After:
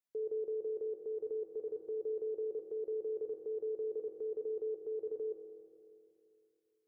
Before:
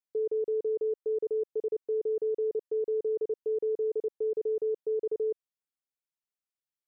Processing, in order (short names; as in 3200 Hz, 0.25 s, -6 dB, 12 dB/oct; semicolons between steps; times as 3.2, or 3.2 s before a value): limiter -32 dBFS, peak gain reduction 6.5 dB; on a send: reverb RT60 2.7 s, pre-delay 5 ms, DRR 3.5 dB; on the sum: gain -2 dB